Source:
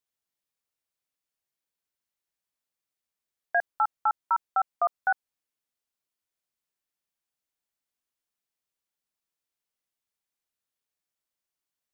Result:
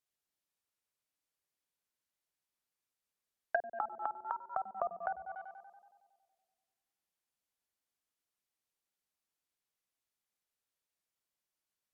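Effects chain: on a send: tape echo 94 ms, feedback 78%, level -8 dB, low-pass 1.4 kHz; on the sum: low-pass that closes with the level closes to 480 Hz, closed at -25.5 dBFS; 3.82–4.33 s: three bands compressed up and down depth 40%; trim -2 dB

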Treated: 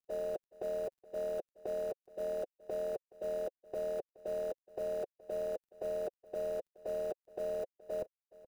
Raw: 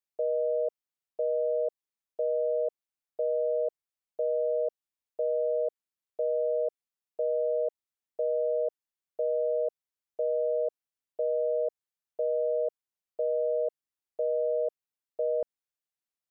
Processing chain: companding laws mixed up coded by mu; bass shelf 380 Hz +10 dB; band-stop 530 Hz, Q 12; comb 5.4 ms, depth 93%; harmonic-percussive split harmonic -16 dB; peak limiter -34.5 dBFS, peak gain reduction 10 dB; granular stretch 0.52×, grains 21 ms; on a send: delay 422 ms -20 dB; on the sum: trim +6.5 dB

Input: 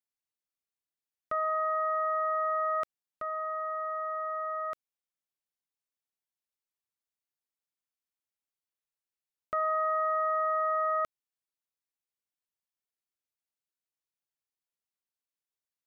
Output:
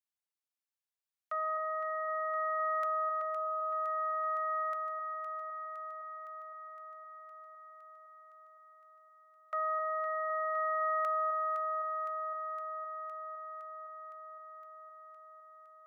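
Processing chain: steep high-pass 610 Hz; on a send: echo whose repeats swap between lows and highs 256 ms, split 1.2 kHz, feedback 85%, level -6 dB; on the sum: trim -4 dB

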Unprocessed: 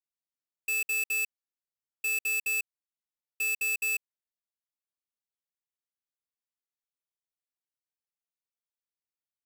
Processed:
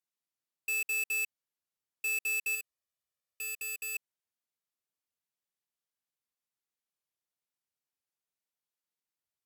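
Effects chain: 2.55–3.95 s: comb 1.7 ms, depth 65%; peak limiter -32.5 dBFS, peak gain reduction 8.5 dB; trim +1.5 dB; Vorbis 128 kbps 48 kHz

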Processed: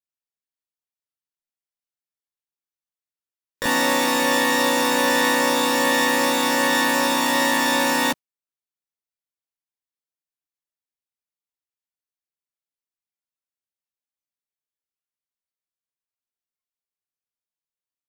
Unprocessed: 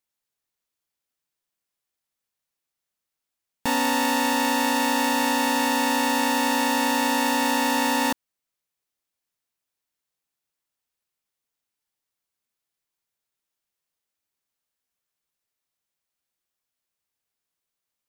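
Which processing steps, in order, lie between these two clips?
spectral noise reduction 15 dB; harmony voices -7 st -16 dB, +4 st -9 dB, +12 st -1 dB

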